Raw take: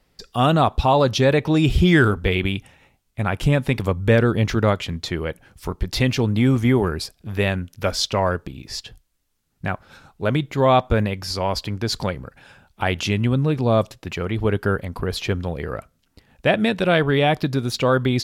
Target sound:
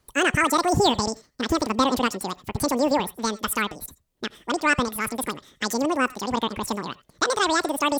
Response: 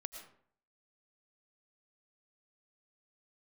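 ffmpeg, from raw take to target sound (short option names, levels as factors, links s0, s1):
-filter_complex "[0:a]asetrate=100548,aresample=44100[s0];[1:a]atrim=start_sample=2205,atrim=end_sample=3969[s1];[s0][s1]afir=irnorm=-1:irlink=0"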